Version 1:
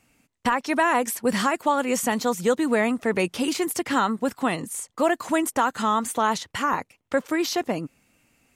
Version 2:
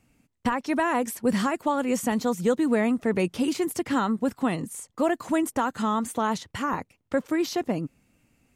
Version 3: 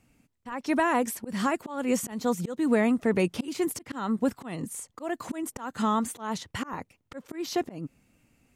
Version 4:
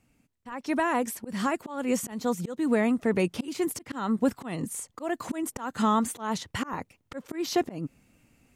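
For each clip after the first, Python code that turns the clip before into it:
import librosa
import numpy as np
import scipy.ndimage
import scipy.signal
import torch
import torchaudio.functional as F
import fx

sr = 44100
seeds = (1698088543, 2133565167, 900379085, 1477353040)

y1 = fx.low_shelf(x, sr, hz=390.0, db=10.0)
y1 = y1 * 10.0 ** (-6.0 / 20.0)
y2 = fx.auto_swell(y1, sr, attack_ms=233.0)
y3 = fx.rider(y2, sr, range_db=3, speed_s=2.0)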